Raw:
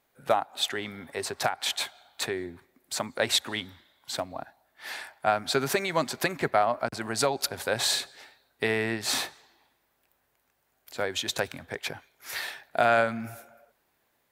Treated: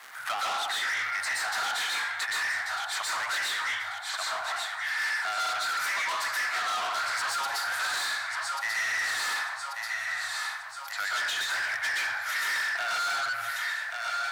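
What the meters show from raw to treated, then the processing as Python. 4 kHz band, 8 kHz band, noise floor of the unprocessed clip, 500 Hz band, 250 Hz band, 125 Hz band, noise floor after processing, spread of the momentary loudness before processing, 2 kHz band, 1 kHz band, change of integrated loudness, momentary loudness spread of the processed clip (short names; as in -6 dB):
0.0 dB, -0.5 dB, -73 dBFS, -15.0 dB, under -20 dB, under -20 dB, -38 dBFS, 13 LU, +6.5 dB, 0.0 dB, 0.0 dB, 4 LU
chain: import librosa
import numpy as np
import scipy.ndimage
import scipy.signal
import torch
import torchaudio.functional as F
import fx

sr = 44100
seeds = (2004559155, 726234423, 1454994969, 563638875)

y = fx.block_float(x, sr, bits=7)
y = fx.band_shelf(y, sr, hz=1500.0, db=9.5, octaves=1.1)
y = np.clip(y, -10.0 ** (-19.0 / 20.0), 10.0 ** (-19.0 / 20.0))
y = fx.rider(y, sr, range_db=3, speed_s=0.5)
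y = scipy.signal.sosfilt(scipy.signal.ellip(3, 1.0, 40, [110.0, 730.0], 'bandstop', fs=sr, output='sos'), y)
y = fx.echo_feedback(y, sr, ms=1137, feedback_pct=38, wet_db=-13)
y = fx.rev_plate(y, sr, seeds[0], rt60_s=0.69, hf_ratio=0.55, predelay_ms=110, drr_db=-8.5)
y = 10.0 ** (-26.0 / 20.0) * np.tanh(y / 10.0 ** (-26.0 / 20.0))
y = fx.dmg_crackle(y, sr, seeds[1], per_s=190.0, level_db=-49.0)
y = fx.weighting(y, sr, curve='A')
y = fx.band_squash(y, sr, depth_pct=70)
y = y * librosa.db_to_amplitude(-2.0)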